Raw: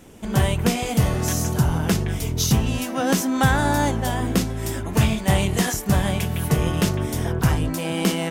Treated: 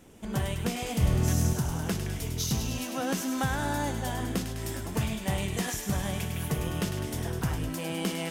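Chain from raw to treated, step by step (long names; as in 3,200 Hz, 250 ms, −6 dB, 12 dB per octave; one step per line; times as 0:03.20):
downward compressor 2 to 1, threshold −20 dBFS, peak gain reduction 5 dB
0:01.01–0:01.53: low-shelf EQ 260 Hz +10 dB
delay with a high-pass on its return 102 ms, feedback 74%, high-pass 1,800 Hz, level −6.5 dB
level −7.5 dB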